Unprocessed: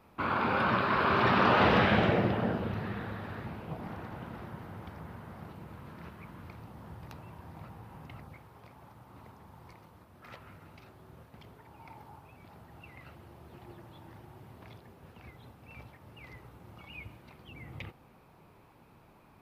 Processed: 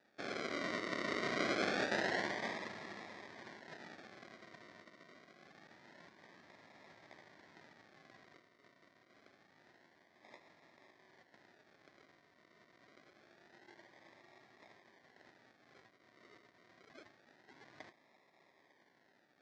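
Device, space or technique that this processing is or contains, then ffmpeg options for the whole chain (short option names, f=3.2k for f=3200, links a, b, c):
circuit-bent sampling toy: -filter_complex "[0:a]asettb=1/sr,asplit=3[a][b][c];[a]atrim=end=4.824[d];[b]atrim=start=4.82:end=5.45,asetpts=PTS-STARTPTS,afade=t=in:d=0.004:c=qsin,afade=t=out:st=0.626:d=0.004:c=qsin,highpass=170[e];[c]atrim=start=5.446[f];[d][e]acrossfade=d=0.004:c1=hsin:c2=qsin[g];[g][f]acrossfade=d=0.004:c1=qsin:c2=hsin,acrusher=samples=41:mix=1:aa=0.000001:lfo=1:lforange=24.6:lforate=0.26,highpass=440,equalizer=f=480:t=q:w=4:g=-8,equalizer=f=840:t=q:w=4:g=-3,equalizer=f=1.3k:t=q:w=4:g=-5,equalizer=f=1.9k:t=q:w=4:g=8,equalizer=f=2.8k:t=q:w=4:g=-8,lowpass=f=5.3k:w=0.5412,lowpass=f=5.3k:w=1.3066,volume=-4.5dB"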